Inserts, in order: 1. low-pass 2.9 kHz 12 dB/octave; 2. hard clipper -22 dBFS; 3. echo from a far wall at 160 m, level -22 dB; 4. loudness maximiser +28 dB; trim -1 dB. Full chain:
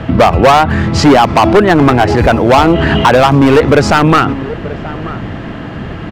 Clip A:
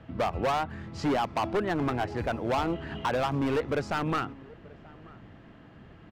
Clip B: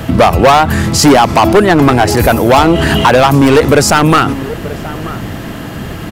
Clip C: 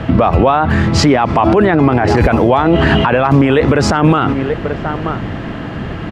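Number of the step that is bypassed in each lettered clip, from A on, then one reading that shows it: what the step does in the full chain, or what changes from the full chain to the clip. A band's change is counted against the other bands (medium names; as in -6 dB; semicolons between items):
4, momentary loudness spread change +5 LU; 1, 8 kHz band +9.5 dB; 2, distortion -7 dB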